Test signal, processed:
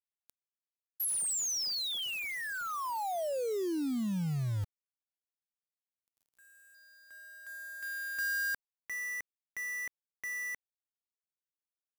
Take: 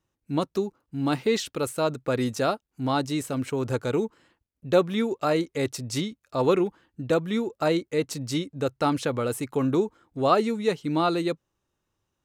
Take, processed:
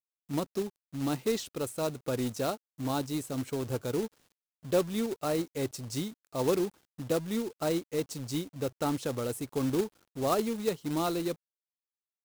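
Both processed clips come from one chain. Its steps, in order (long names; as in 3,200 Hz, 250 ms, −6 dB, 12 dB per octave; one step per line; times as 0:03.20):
log-companded quantiser 4 bits
parametric band 1,900 Hz −6 dB 2.1 octaves
level −5.5 dB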